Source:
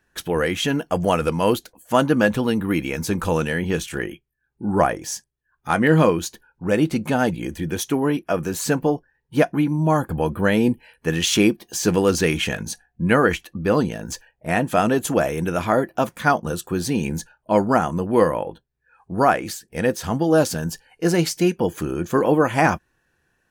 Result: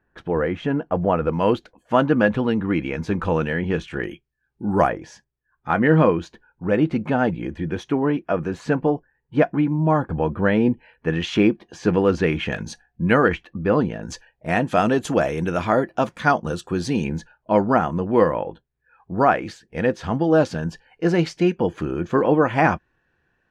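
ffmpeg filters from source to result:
-af "asetnsamples=n=441:p=0,asendcmd='1.33 lowpass f 2600;4.04 lowpass f 5700;4.89 lowpass f 2300;12.52 lowpass f 4500;13.28 lowpass f 2400;14.03 lowpass f 5300;17.04 lowpass f 3200',lowpass=1.4k"

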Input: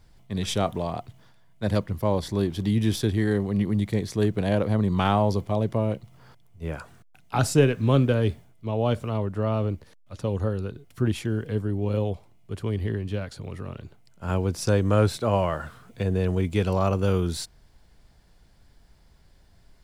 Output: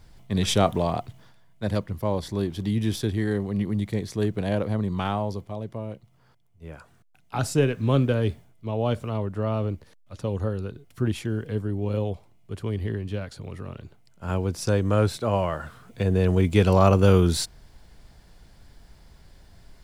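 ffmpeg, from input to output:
-af "volume=19.5dB,afade=t=out:st=0.91:d=0.81:silence=0.473151,afade=t=out:st=4.57:d=0.99:silence=0.446684,afade=t=in:st=6.68:d=1.28:silence=0.398107,afade=t=in:st=15.61:d=1.22:silence=0.446684"

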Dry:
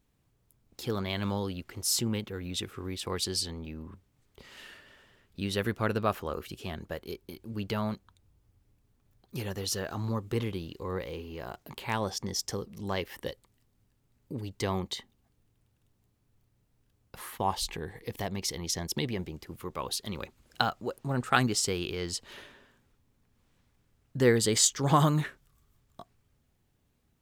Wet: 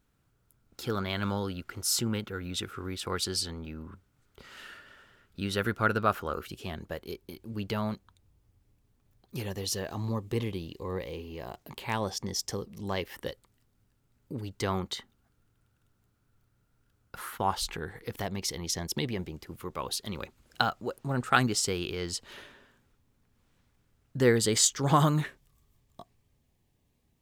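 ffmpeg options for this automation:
-af "asetnsamples=n=441:p=0,asendcmd='6.48 equalizer g 0;9.46 equalizer g -9.5;11.56 equalizer g -2;13.14 equalizer g 6;14.68 equalizer g 13.5;18.22 equalizer g 2.5;25.25 equalizer g -9.5',equalizer=f=1.4k:t=o:w=0.28:g=11.5"

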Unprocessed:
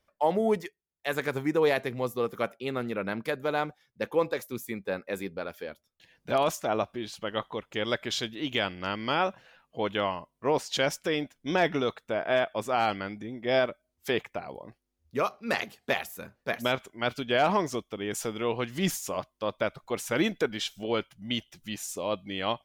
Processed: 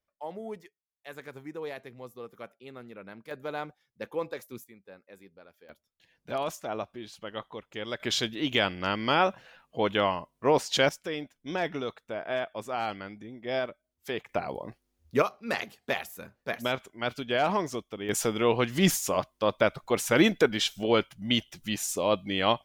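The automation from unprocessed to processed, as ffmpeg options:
-af "asetnsamples=n=441:p=0,asendcmd='3.31 volume volume -6.5dB;4.64 volume volume -18dB;5.69 volume volume -6dB;8 volume volume 3dB;10.89 volume volume -5.5dB;14.29 volume volume 5.5dB;15.22 volume volume -2dB;18.09 volume volume 5dB',volume=-13.5dB"

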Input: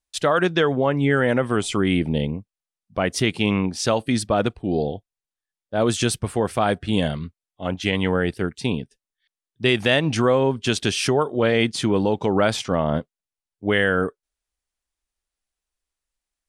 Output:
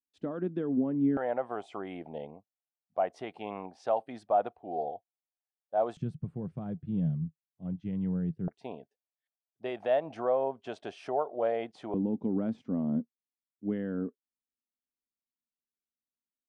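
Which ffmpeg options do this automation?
-af "asetnsamples=n=441:p=0,asendcmd='1.17 bandpass f 730;5.97 bandpass f 160;8.48 bandpass f 680;11.94 bandpass f 240',bandpass=f=250:t=q:w=4.8:csg=0"

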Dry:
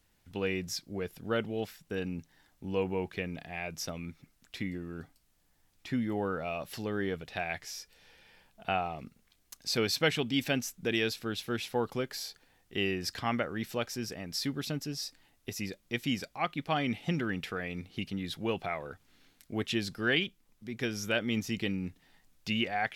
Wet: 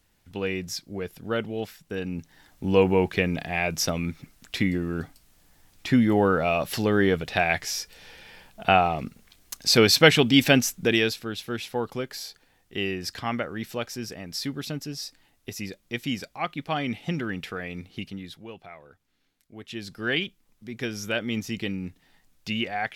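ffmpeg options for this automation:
-af "volume=24dB,afade=t=in:st=2.04:d=0.65:silence=0.375837,afade=t=out:st=10.6:d=0.66:silence=0.334965,afade=t=out:st=17.92:d=0.55:silence=0.251189,afade=t=in:st=19.62:d=0.55:silence=0.251189"

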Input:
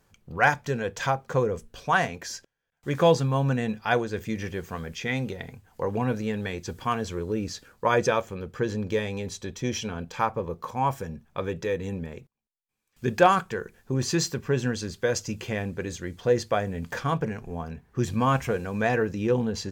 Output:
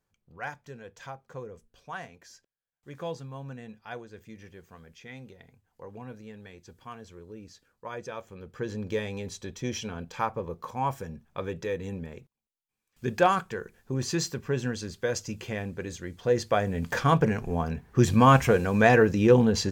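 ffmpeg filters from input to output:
-af "volume=5.5dB,afade=t=in:st=8.08:d=0.86:silence=0.237137,afade=t=in:st=16.2:d=1.1:silence=0.354813"

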